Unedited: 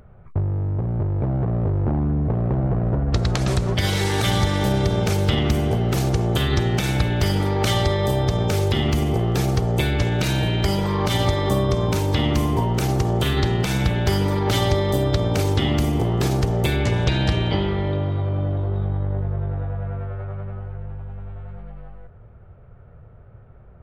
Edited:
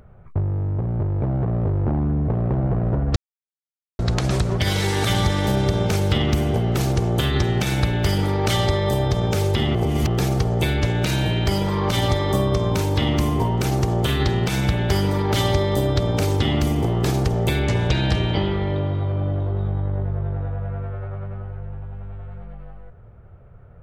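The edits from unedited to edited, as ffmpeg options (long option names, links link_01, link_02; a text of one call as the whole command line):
ffmpeg -i in.wav -filter_complex "[0:a]asplit=4[link_01][link_02][link_03][link_04];[link_01]atrim=end=3.16,asetpts=PTS-STARTPTS,afade=type=out:start_time=3.156:duration=0.004:curve=hsin,apad=pad_dur=0.83[link_05];[link_02]atrim=start=3.16:end=8.922,asetpts=PTS-STARTPTS,afade=type=in:duration=0.004:curve=hsin[link_06];[link_03]atrim=start=8.918:end=9.242,asetpts=PTS-STARTPTS,areverse[link_07];[link_04]atrim=start=9.238[link_08];[link_05][link_06]concat=n=2:v=0:a=1[link_09];[link_09][link_07]acrossfade=duration=0.004:curve1=hsin:curve2=hsin[link_10];[link_10][link_08]acrossfade=duration=0.004:curve1=hsin:curve2=hsin" out.wav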